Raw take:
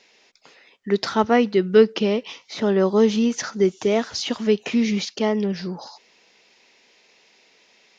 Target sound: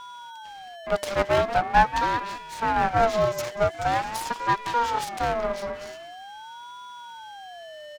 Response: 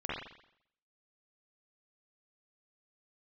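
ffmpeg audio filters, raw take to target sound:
-filter_complex "[0:a]asplit=2[a][b];[b]adelay=185,lowpass=f=990:p=1,volume=-10dB,asplit=2[c][d];[d]adelay=185,lowpass=f=990:p=1,volume=0.22,asplit=2[e][f];[f]adelay=185,lowpass=f=990:p=1,volume=0.22[g];[c][e][g]amix=inputs=3:normalize=0[h];[a][h]amix=inputs=2:normalize=0,aeval=exprs='val(0)+0.02*sin(2*PI*1200*n/s)':c=same,aeval=exprs='abs(val(0))':c=same,aeval=exprs='val(0)*sin(2*PI*790*n/s+790*0.25/0.44*sin(2*PI*0.44*n/s))':c=same,volume=-1.5dB"

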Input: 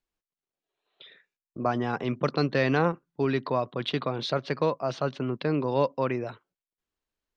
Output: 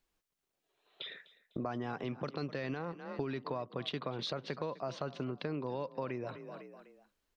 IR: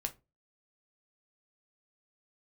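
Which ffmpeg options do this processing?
-filter_complex "[0:a]asplit=4[a][b][c][d];[b]adelay=251,afreqshift=32,volume=-20dB[e];[c]adelay=502,afreqshift=64,volume=-28.4dB[f];[d]adelay=753,afreqshift=96,volume=-36.8dB[g];[a][e][f][g]amix=inputs=4:normalize=0,alimiter=limit=-17.5dB:level=0:latency=1:release=28,acompressor=threshold=-42dB:ratio=6,volume=6dB"

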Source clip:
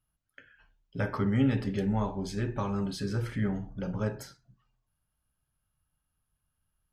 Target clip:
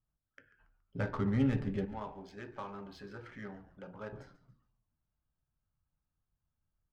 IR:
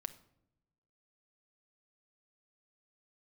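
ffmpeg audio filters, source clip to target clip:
-filter_complex "[0:a]asettb=1/sr,asplit=3[a][b][c];[a]atrim=end=1.854[d];[b]atrim=start=1.85:end=4.13,asetpts=PTS-STARTPTS,afade=t=in:d=0.004:c=qsin,afade=t=out:st=2.276:d=0.004:c=qsin,highpass=f=880:p=1[e];[c]atrim=start=4.126[f];[d][e]acrossfade=d=0.004:c1=hsin:c2=qsin[g];[g][f]acrossfade=d=0.004:c1=qsin:c2=hsin,adynamicsmooth=sensitivity=6.5:basefreq=1.6k,asplit=4[h][i][j][k];[i]adelay=140,afreqshift=-120,volume=-16.5dB[l];[j]adelay=280,afreqshift=-240,volume=-24.5dB[m];[k]adelay=420,afreqshift=-360,volume=-32.4dB[n];[h][l][m][n]amix=inputs=4:normalize=0,volume=-4dB"

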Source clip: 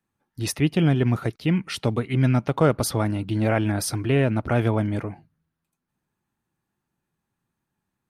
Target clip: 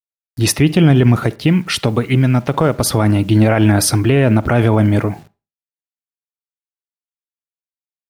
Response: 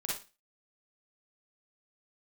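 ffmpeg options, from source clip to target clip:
-filter_complex "[0:a]asettb=1/sr,asplit=3[a][b][c];[a]atrim=end=1.244[d];[b]atrim=start=1.24:end=2.98,asetpts=PTS-STARTPTS,afade=t=in:d=0.004:c=qsin,afade=t=out:st=1.736:d=0.004:c=qsin,acompressor=threshold=-22dB:ratio=6[e];[c]atrim=start=2.976[f];[d][e]acrossfade=d=0.004:c1=hsin:c2=qsin[g];[g][f]acrossfade=d=0.004:c1=qsin:c2=hsin,acrusher=bits=9:mix=0:aa=0.000001,asplit=2[h][i];[1:a]atrim=start_sample=2205,highshelf=f=3.2k:g=-8.5[j];[i][j]afir=irnorm=-1:irlink=0,volume=-19.5dB[k];[h][k]amix=inputs=2:normalize=0,alimiter=level_in=13dB:limit=-1dB:release=50:level=0:latency=1,volume=-1dB"

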